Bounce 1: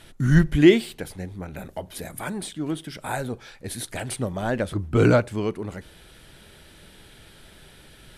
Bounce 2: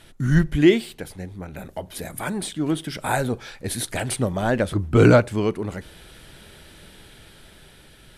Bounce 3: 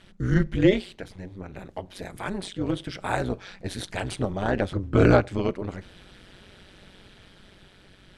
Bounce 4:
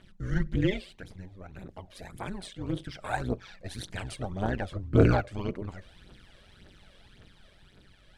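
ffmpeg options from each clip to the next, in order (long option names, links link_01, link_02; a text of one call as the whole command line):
ffmpeg -i in.wav -af "dynaudnorm=framelen=760:gausssize=5:maxgain=11.5dB,volume=-1dB" out.wav
ffmpeg -i in.wav -af "lowpass=5800,tremolo=f=190:d=0.857" out.wav
ffmpeg -i in.wav -af "aphaser=in_gain=1:out_gain=1:delay=1.9:decay=0.61:speed=1.8:type=triangular,volume=-8dB" out.wav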